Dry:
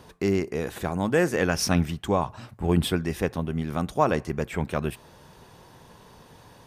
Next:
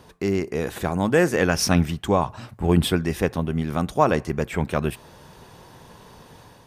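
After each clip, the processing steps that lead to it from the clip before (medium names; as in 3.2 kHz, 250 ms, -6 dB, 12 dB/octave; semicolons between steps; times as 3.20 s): level rider gain up to 4 dB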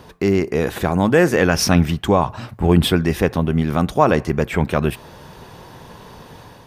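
peaking EQ 8.4 kHz -5 dB 1.1 oct; in parallel at -1.5 dB: peak limiter -15 dBFS, peak gain reduction 10.5 dB; on the sum: trim +1.5 dB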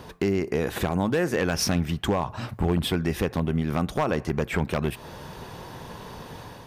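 compression 3:1, threshold -23 dBFS, peak gain reduction 11.5 dB; wavefolder -15 dBFS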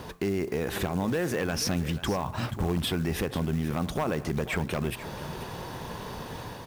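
peak limiter -22 dBFS, peak gain reduction 7 dB; delay 484 ms -14.5 dB; companded quantiser 6-bit; trim +2 dB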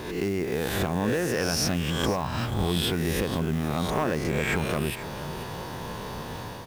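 reverse spectral sustain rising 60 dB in 0.88 s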